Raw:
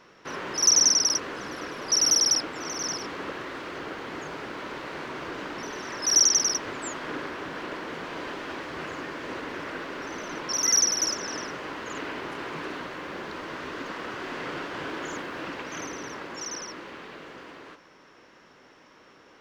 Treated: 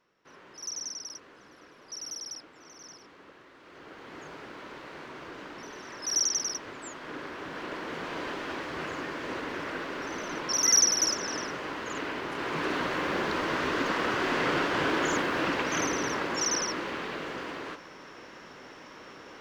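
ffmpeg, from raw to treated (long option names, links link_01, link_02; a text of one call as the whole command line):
ffmpeg -i in.wav -af "volume=7dB,afade=type=in:start_time=3.58:duration=0.67:silence=0.298538,afade=type=in:start_time=6.98:duration=1.11:silence=0.421697,afade=type=in:start_time=12.29:duration=0.66:silence=0.446684" out.wav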